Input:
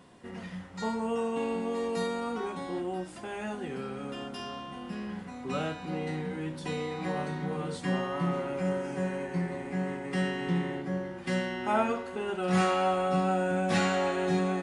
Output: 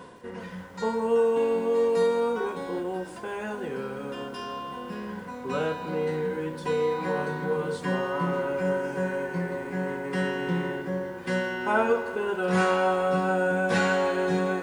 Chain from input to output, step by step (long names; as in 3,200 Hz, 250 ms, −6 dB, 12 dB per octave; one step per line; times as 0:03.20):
reversed playback
upward compression, threshold −39 dBFS
reversed playback
hollow resonant body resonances 480/990/1,500 Hz, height 12 dB, ringing for 35 ms
feedback echo at a low word length 159 ms, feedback 55%, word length 8 bits, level −15 dB